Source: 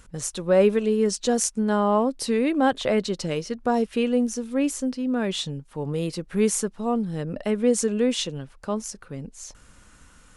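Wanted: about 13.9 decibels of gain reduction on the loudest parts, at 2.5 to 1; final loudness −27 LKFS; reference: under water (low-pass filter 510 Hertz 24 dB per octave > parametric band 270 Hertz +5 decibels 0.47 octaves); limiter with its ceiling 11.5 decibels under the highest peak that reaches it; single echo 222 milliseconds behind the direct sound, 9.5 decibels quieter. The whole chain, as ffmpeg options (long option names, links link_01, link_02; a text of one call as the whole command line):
ffmpeg -i in.wav -af "acompressor=threshold=-36dB:ratio=2.5,alimiter=level_in=4dB:limit=-24dB:level=0:latency=1,volume=-4dB,lowpass=frequency=510:width=0.5412,lowpass=frequency=510:width=1.3066,equalizer=frequency=270:width_type=o:width=0.47:gain=5,aecho=1:1:222:0.335,volume=9.5dB" out.wav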